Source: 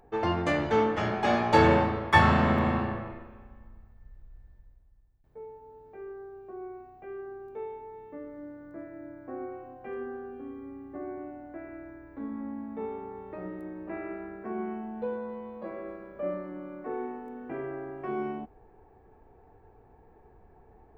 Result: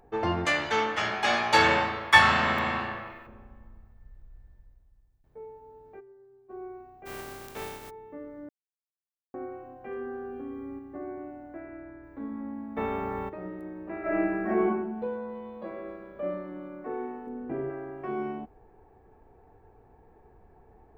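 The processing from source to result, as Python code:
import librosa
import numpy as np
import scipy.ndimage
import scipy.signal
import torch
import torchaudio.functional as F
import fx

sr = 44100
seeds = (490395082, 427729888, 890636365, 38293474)

y = fx.tilt_shelf(x, sr, db=-10.0, hz=860.0, at=(0.45, 3.27))
y = fx.stiff_resonator(y, sr, f0_hz=130.0, decay_s=0.37, stiffness=0.008, at=(5.99, 6.49), fade=0.02)
y = fx.spec_flatten(y, sr, power=0.39, at=(7.05, 7.89), fade=0.02)
y = fx.env_flatten(y, sr, amount_pct=50, at=(9.91, 10.79))
y = fx.lowpass(y, sr, hz=3800.0, slope=12, at=(11.6, 12.04))
y = fx.spectral_comp(y, sr, ratio=2.0, at=(12.76, 13.28), fade=0.02)
y = fx.reverb_throw(y, sr, start_s=14.01, length_s=0.62, rt60_s=0.81, drr_db=-11.5)
y = fx.peak_eq(y, sr, hz=3500.0, db=7.5, octaves=0.44, at=(15.35, 16.68))
y = fx.tilt_shelf(y, sr, db=6.0, hz=740.0, at=(17.27, 17.7))
y = fx.edit(y, sr, fx.silence(start_s=8.49, length_s=0.85), tone=tone)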